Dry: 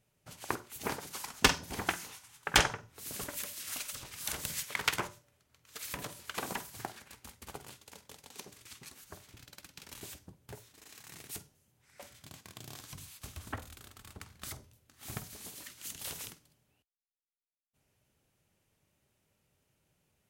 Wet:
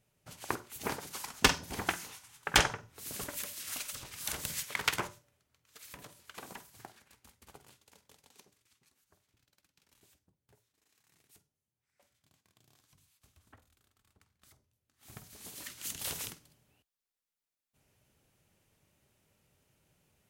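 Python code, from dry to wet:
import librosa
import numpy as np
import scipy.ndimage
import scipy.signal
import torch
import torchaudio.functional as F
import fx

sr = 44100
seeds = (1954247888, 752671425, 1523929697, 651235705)

y = fx.gain(x, sr, db=fx.line((5.09, 0.0), (5.79, -9.5), (8.28, -9.5), (8.69, -20.0), (14.59, -20.0), (15.17, -9.0), (15.66, 3.5)))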